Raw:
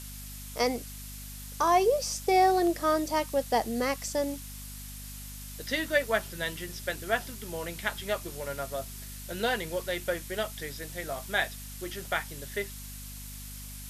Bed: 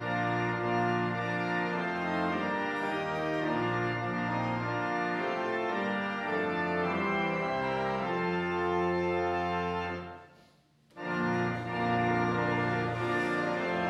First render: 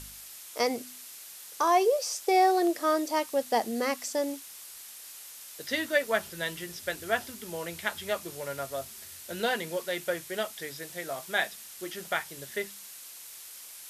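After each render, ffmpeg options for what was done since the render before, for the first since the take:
-af "bandreject=f=50:t=h:w=4,bandreject=f=100:t=h:w=4,bandreject=f=150:t=h:w=4,bandreject=f=200:t=h:w=4,bandreject=f=250:t=h:w=4"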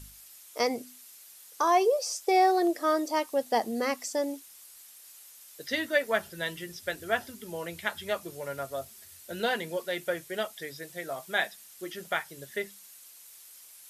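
-af "afftdn=nr=8:nf=-46"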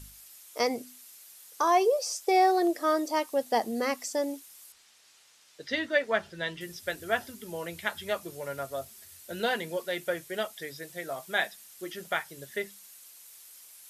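-filter_complex "[0:a]asettb=1/sr,asplit=3[a][b][c];[a]atrim=end=4.724[d];[b]atrim=start=4.72:end=6.61,asetpts=PTS-STARTPTS,afade=t=in:d=0.004:c=qsin,afade=t=out:st=1.886:d=0.004:c=qsin,lowpass=5.2k[e];[c]atrim=start=6.606[f];[d][e]acrossfade=d=0.004:c1=hsin:c2=qsin[g];[g][f]acrossfade=d=0.004:c1=qsin:c2=hsin"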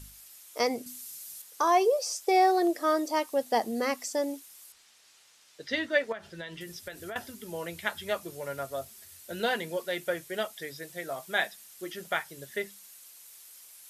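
-filter_complex "[0:a]asettb=1/sr,asplit=3[a][b][c];[a]atrim=end=0.864[d];[b]atrim=start=0.86:end=1.42,asetpts=PTS-STARTPTS,afade=t=in:d=0.004:c=qsin,afade=t=out:st=0.556:d=0.004:c=qsin,bass=f=250:g=13,treble=f=4k:g=8[e];[c]atrim=start=1.416[f];[d][e]acrossfade=d=0.004:c1=hsin:c2=qsin[g];[g][f]acrossfade=d=0.004:c1=qsin:c2=hsin,asettb=1/sr,asplit=3[h][i][j];[h]atrim=end=6.124[k];[i]atrim=start=6.12:end=7.16,asetpts=PTS-STARTPTS,afade=t=in:d=0.004:c=qsin,afade=t=out:st=1.036:d=0.004:c=qsin,acompressor=threshold=-35dB:ratio=12:attack=3.2:release=140:knee=1:detection=peak[l];[j]atrim=start=7.156[m];[k][l]acrossfade=d=0.004:c1=hsin:c2=qsin[n];[n][m]acrossfade=d=0.004:c1=qsin:c2=hsin"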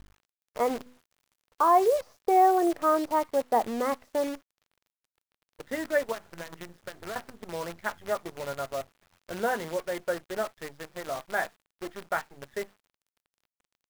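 -af "lowpass=f=1.2k:t=q:w=1.5,acrusher=bits=7:dc=4:mix=0:aa=0.000001"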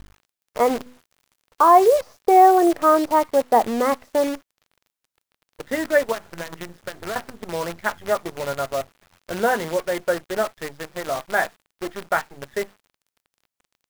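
-af "volume=8dB"

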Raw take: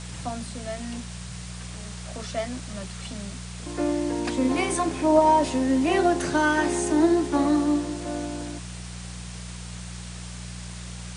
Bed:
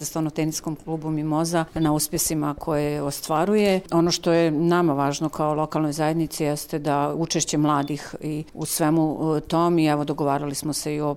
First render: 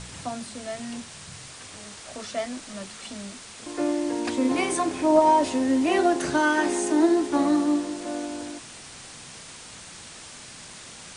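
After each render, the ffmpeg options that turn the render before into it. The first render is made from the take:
-af "bandreject=f=60:t=h:w=4,bandreject=f=120:t=h:w=4,bandreject=f=180:t=h:w=4"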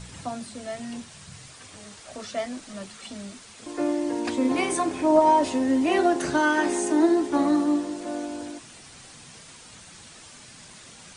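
-af "afftdn=nr=6:nf=-44"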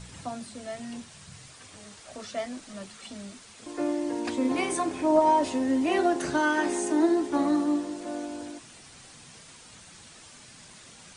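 -af "volume=-3dB"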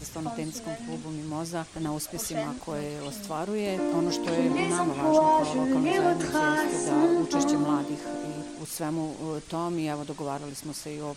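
-filter_complex "[1:a]volume=-10.5dB[a];[0:a][a]amix=inputs=2:normalize=0"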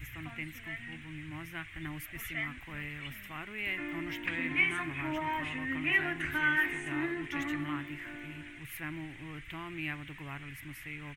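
-af "firequalizer=gain_entry='entry(130,0);entry(190,-18);entry(300,-11);entry(480,-24);entry(2000,11);entry(3100,-1);entry(4500,-24);entry(9600,-17);entry(14000,3)':delay=0.05:min_phase=1"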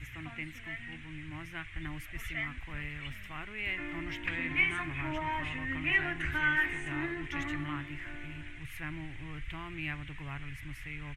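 -af "lowpass=8.4k,asubboost=boost=5:cutoff=98"

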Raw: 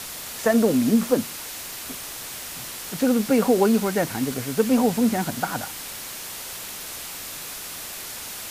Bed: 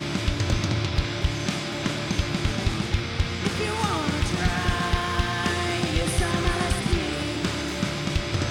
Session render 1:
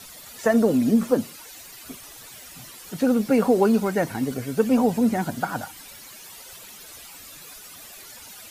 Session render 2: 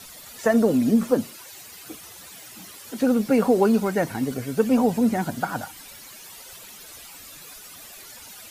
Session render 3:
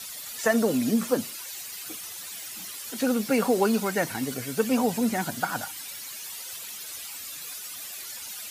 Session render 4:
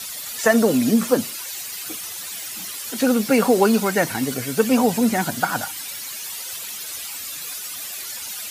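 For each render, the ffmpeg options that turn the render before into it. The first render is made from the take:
-af "afftdn=nr=13:nf=-36"
-filter_complex "[0:a]asettb=1/sr,asplit=3[a][b][c];[a]atrim=end=1.314[d];[b]atrim=start=1.31:end=3,asetpts=PTS-STARTPTS,afade=t=in:d=0.004:c=qsin,afade=t=out:st=1.686:d=0.004:c=qsin,afreqshift=58[e];[c]atrim=start=2.996[f];[d][e]acrossfade=d=0.004:c1=hsin:c2=qsin[g];[g][f]acrossfade=d=0.004:c1=qsin:c2=hsin"
-af "highpass=59,tiltshelf=f=1.3k:g=-5.5"
-af "volume=6.5dB"

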